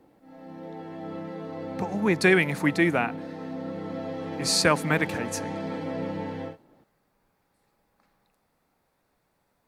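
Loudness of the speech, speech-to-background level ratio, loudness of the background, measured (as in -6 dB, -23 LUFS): -24.5 LUFS, 11.0 dB, -35.5 LUFS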